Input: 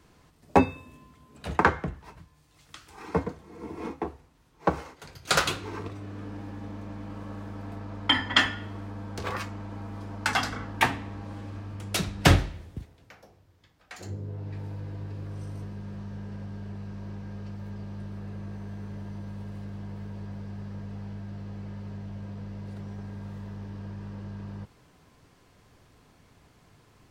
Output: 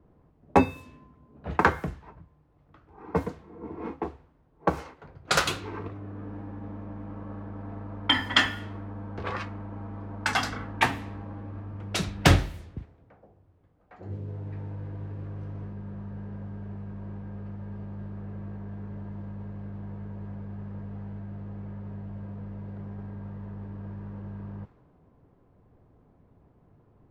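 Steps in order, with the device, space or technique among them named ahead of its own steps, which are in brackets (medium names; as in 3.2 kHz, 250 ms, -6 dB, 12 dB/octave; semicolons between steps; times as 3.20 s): cassette deck with a dynamic noise filter (white noise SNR 28 dB; level-controlled noise filter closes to 630 Hz, open at -23.5 dBFS)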